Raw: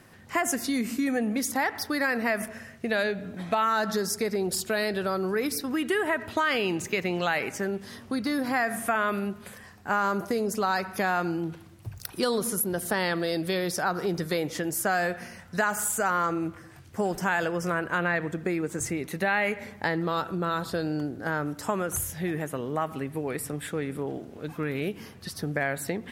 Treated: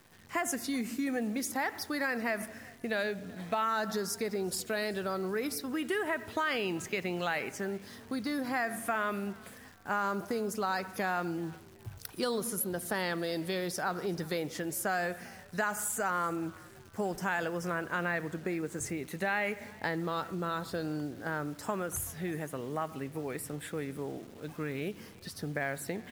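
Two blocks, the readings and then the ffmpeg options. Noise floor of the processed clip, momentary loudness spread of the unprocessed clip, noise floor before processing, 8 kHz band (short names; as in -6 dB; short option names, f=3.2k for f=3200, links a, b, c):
-53 dBFS, 8 LU, -49 dBFS, -6.0 dB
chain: -filter_complex "[0:a]acrusher=bits=9:dc=4:mix=0:aa=0.000001,asplit=3[a][b][c];[b]adelay=380,afreqshift=54,volume=-23.5dB[d];[c]adelay=760,afreqshift=108,volume=-32.9dB[e];[a][d][e]amix=inputs=3:normalize=0,volume=-6dB"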